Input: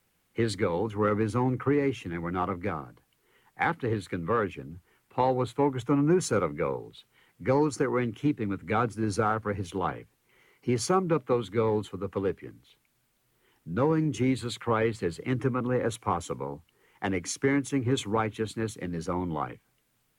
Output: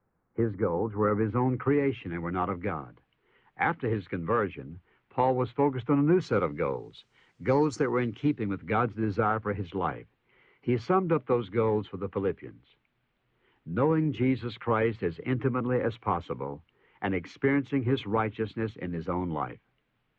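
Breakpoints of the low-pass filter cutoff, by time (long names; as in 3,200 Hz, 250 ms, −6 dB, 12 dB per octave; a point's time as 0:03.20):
low-pass filter 24 dB per octave
0:00.80 1,400 Hz
0:01.70 3,100 Hz
0:05.98 3,100 Hz
0:06.83 6,700 Hz
0:07.73 6,700 Hz
0:08.86 3,200 Hz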